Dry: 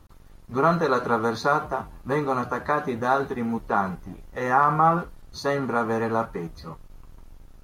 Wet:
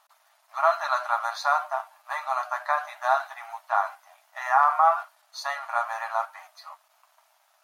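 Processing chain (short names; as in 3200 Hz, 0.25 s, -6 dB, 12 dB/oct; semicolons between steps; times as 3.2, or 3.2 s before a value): brick-wall FIR high-pass 590 Hz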